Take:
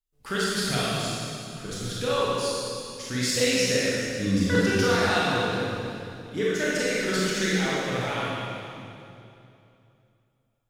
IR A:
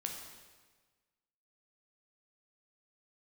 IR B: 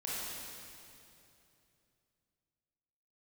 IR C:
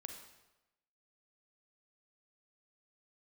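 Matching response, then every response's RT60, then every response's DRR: B; 1.4, 2.8, 1.0 seconds; 1.5, −8.0, 4.0 decibels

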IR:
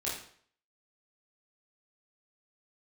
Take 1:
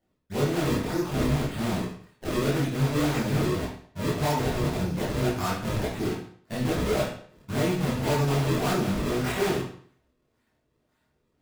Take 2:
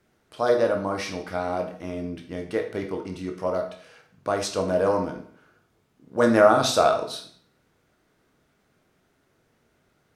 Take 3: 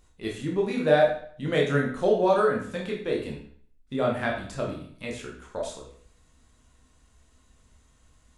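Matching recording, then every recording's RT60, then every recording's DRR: 1; 0.55, 0.55, 0.55 seconds; −7.5, 3.0, −2.0 decibels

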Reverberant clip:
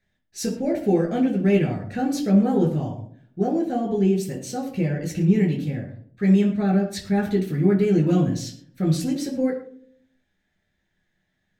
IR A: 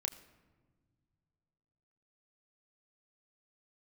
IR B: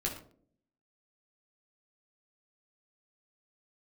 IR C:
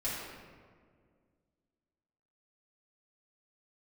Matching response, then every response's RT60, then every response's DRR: B; non-exponential decay, 0.55 s, 1.9 s; 4.5, −2.0, −9.5 decibels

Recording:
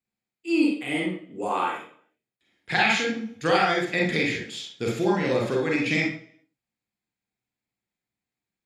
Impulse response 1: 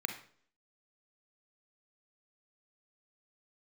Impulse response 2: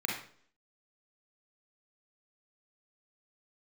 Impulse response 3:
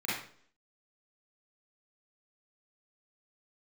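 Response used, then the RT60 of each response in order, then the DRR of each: 2; 0.55, 0.55, 0.55 seconds; 5.0, −2.5, −9.5 decibels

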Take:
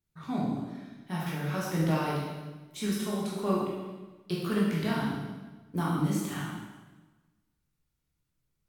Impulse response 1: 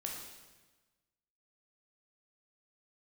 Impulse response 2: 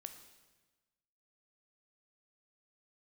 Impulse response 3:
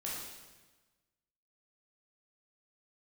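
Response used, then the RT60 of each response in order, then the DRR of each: 3; 1.2, 1.2, 1.2 seconds; −1.0, 7.0, −6.0 decibels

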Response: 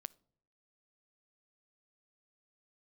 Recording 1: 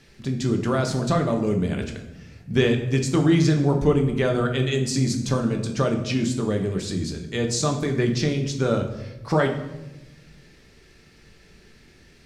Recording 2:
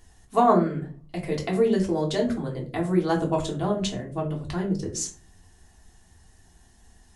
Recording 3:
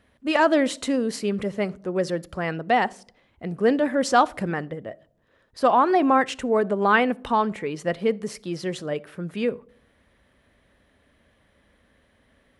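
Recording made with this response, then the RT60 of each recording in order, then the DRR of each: 3; 1.0 s, 0.40 s, non-exponential decay; 3.0, −1.5, 21.5 decibels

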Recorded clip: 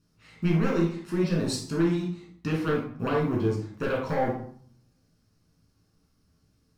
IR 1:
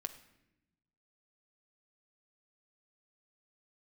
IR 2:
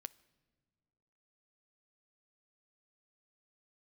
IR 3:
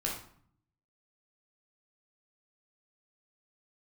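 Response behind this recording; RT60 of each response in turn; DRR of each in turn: 3; 0.85 s, non-exponential decay, 0.55 s; 8.0, 16.0, −3.0 decibels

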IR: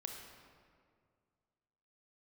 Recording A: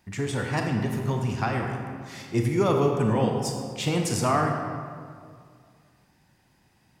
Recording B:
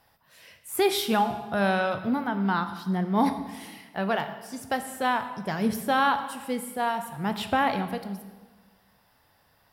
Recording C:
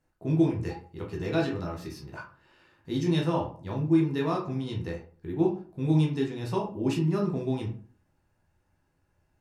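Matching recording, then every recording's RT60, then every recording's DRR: A; 2.1, 1.4, 0.45 seconds; 2.0, 8.0, −2.0 decibels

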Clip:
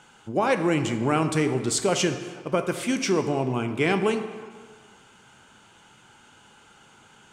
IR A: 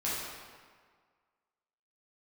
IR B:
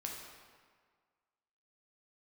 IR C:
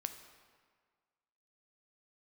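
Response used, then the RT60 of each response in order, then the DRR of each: C; 1.7, 1.7, 1.7 seconds; −9.0, −1.5, 7.5 decibels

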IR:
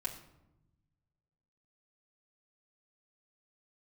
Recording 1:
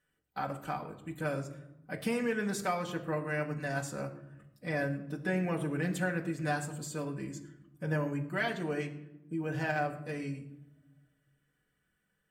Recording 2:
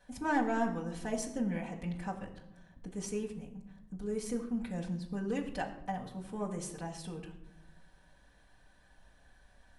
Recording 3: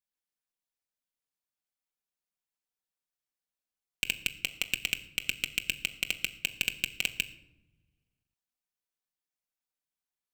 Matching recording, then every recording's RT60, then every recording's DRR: 2; 0.90, 0.90, 0.95 seconds; 0.0, −4.5, 4.5 decibels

